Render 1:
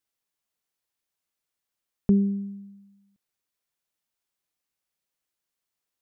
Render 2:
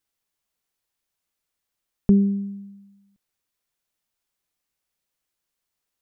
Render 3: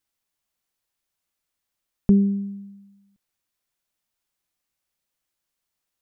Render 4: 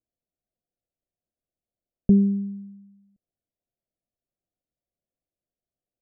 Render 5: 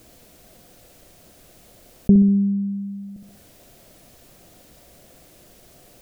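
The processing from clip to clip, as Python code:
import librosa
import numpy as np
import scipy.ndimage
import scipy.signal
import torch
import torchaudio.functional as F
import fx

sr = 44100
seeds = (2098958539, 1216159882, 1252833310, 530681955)

y1 = fx.low_shelf(x, sr, hz=65.0, db=7.5)
y1 = y1 * 10.0 ** (3.0 / 20.0)
y2 = fx.notch(y1, sr, hz=440.0, q=12.0)
y3 = scipy.signal.sosfilt(scipy.signal.cheby1(6, 1.0, 720.0, 'lowpass', fs=sr, output='sos'), y2)
y4 = fx.echo_feedback(y3, sr, ms=64, feedback_pct=35, wet_db=-10)
y4 = fx.env_flatten(y4, sr, amount_pct=50)
y4 = y4 * 10.0 ** (2.5 / 20.0)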